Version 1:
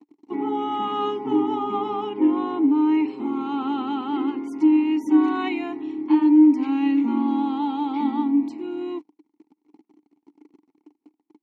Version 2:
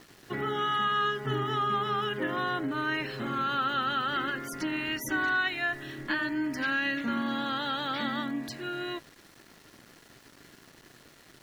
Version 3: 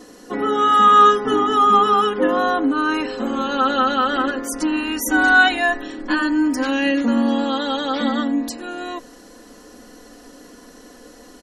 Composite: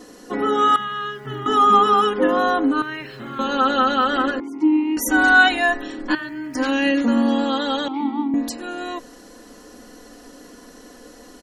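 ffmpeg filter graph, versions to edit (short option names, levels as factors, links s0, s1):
-filter_complex "[1:a]asplit=3[s0][s1][s2];[0:a]asplit=2[s3][s4];[2:a]asplit=6[s5][s6][s7][s8][s9][s10];[s5]atrim=end=0.762[s11];[s0]atrim=start=0.758:end=1.462[s12];[s6]atrim=start=1.458:end=2.822[s13];[s1]atrim=start=2.818:end=3.392[s14];[s7]atrim=start=3.388:end=4.402[s15];[s3]atrim=start=4.398:end=4.972[s16];[s8]atrim=start=4.968:end=6.152[s17];[s2]atrim=start=6.148:end=6.552[s18];[s9]atrim=start=6.548:end=7.882[s19];[s4]atrim=start=7.878:end=8.342[s20];[s10]atrim=start=8.338[s21];[s11][s12]acrossfade=d=0.004:c1=hsin:c2=hsin[s22];[s22][s13]acrossfade=d=0.004:c1=hsin:c2=hsin[s23];[s23][s14]acrossfade=d=0.004:c1=hsin:c2=hsin[s24];[s24][s15]acrossfade=d=0.004:c1=hsin:c2=hsin[s25];[s25][s16]acrossfade=d=0.004:c1=hsin:c2=hsin[s26];[s26][s17]acrossfade=d=0.004:c1=hsin:c2=hsin[s27];[s27][s18]acrossfade=d=0.004:c1=hsin:c2=hsin[s28];[s28][s19]acrossfade=d=0.004:c1=hsin:c2=hsin[s29];[s29][s20]acrossfade=d=0.004:c1=hsin:c2=hsin[s30];[s30][s21]acrossfade=d=0.004:c1=hsin:c2=hsin"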